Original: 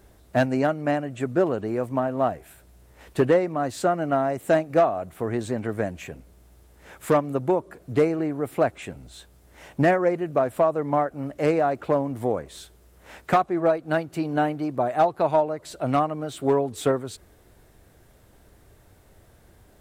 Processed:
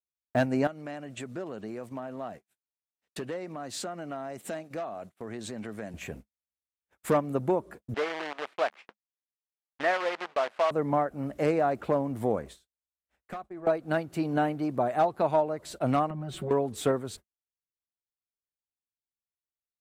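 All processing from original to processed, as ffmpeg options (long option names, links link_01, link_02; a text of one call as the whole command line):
ffmpeg -i in.wav -filter_complex "[0:a]asettb=1/sr,asplit=3[link_01][link_02][link_03];[link_01]atrim=end=0.674[link_04];[link_02]atrim=start=0.67:end=5.94,asetpts=PTS-STARTPTS,afade=type=in:duration=0.004:curve=qsin,afade=type=out:start_time=5.266:duration=0.004:curve=qsin,highpass=120,acompressor=threshold=-39dB:ratio=2.5:attack=3.2:release=140:knee=1:detection=peak,equalizer=frequency=4700:width=0.51:gain=7.5[link_05];[link_03]atrim=start=5.936[link_06];[link_04][link_05]acrossfade=duration=0.004:curve1=hsin:curve2=qsin[link_07];[link_07][link_06]acrossfade=duration=0.004:curve1=qsin:curve2=hsin,asettb=1/sr,asplit=3[link_08][link_09][link_10];[link_08]atrim=end=7.944[link_11];[link_09]atrim=start=7.94:end=10.71,asetpts=PTS-STARTPTS,afade=type=in:duration=0.004:curve=qsin,afade=type=out:start_time=2.766:duration=0.004:curve=qsin,acrusher=bits=5:dc=4:mix=0:aa=0.000001,highpass=760,lowpass=2800[link_12];[link_10]atrim=start=10.706[link_13];[link_11][link_12]acrossfade=duration=0.004:curve1=hsin:curve2=qsin[link_14];[link_14][link_13]acrossfade=duration=0.004:curve1=qsin:curve2=hsin,asettb=1/sr,asplit=3[link_15][link_16][link_17];[link_15]atrim=end=12.474[link_18];[link_16]atrim=start=12.47:end=13.67,asetpts=PTS-STARTPTS,afade=type=in:duration=0.004:curve=qsin,afade=type=out:start_time=1.196:duration=0.004:curve=qsin,acompressor=threshold=-42dB:ratio=2.5:attack=3.2:release=140:knee=1:detection=peak,asubboost=boost=8.5:cutoff=75,bandreject=frequency=910:width=20[link_19];[link_17]atrim=start=13.666[link_20];[link_18][link_19]acrossfade=duration=0.004:curve1=hsin:curve2=qsin[link_21];[link_21][link_20]acrossfade=duration=0.004:curve1=qsin:curve2=hsin,asettb=1/sr,asplit=3[link_22][link_23][link_24];[link_22]atrim=end=16.104[link_25];[link_23]atrim=start=16.1:end=16.51,asetpts=PTS-STARTPTS,afade=type=in:duration=0.004:curve=qsin,afade=type=out:start_time=0.406:duration=0.004:curve=qsin,bass=frequency=250:gain=8,treble=frequency=4000:gain=-7,aecho=1:1:5.4:0.99,atrim=end_sample=18081,acompressor=threshold=-30dB:ratio=6:attack=3.2:release=140:knee=1:detection=peak[link_26];[link_24]atrim=start=16.506[link_27];[link_25][link_26]acrossfade=duration=0.004:curve1=hsin:curve2=qsin[link_28];[link_28][link_27]acrossfade=duration=0.004:curve1=qsin:curve2=hsin,agate=range=-57dB:threshold=-41dB:ratio=16:detection=peak,equalizer=frequency=210:width_type=o:width=0.2:gain=6.5,alimiter=limit=-13.5dB:level=0:latency=1:release=439,volume=-1.5dB" out.wav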